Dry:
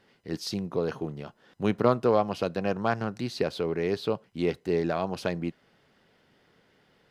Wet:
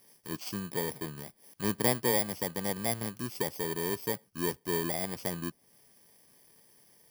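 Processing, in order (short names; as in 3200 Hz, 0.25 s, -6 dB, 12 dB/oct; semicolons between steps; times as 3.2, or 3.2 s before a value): FFT order left unsorted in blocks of 32 samples; mismatched tape noise reduction encoder only; gain -5 dB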